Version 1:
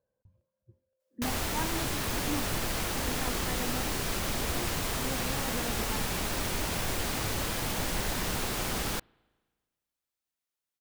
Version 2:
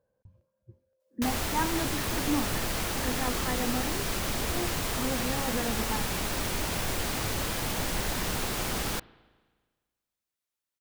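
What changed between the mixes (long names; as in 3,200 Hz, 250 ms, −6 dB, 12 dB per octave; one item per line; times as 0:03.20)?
speech +6.5 dB
background: send +10.0 dB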